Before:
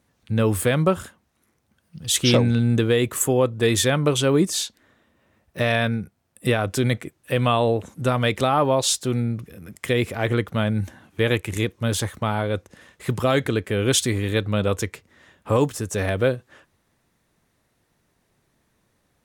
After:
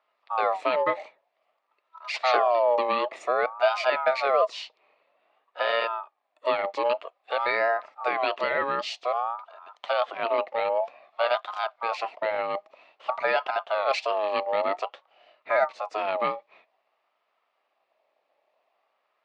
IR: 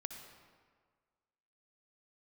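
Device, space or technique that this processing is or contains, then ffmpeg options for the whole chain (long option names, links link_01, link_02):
voice changer toy: -af "aeval=exprs='val(0)*sin(2*PI*920*n/s+920*0.25/0.52*sin(2*PI*0.52*n/s))':channel_layout=same,highpass=580,equalizer=frequency=630:width_type=q:width=4:gain=7,equalizer=frequency=950:width_type=q:width=4:gain=-7,equalizer=frequency=1500:width_type=q:width=4:gain=-9,equalizer=frequency=3100:width_type=q:width=4:gain=-5,lowpass=frequency=3600:width=0.5412,lowpass=frequency=3600:width=1.3066,volume=1dB"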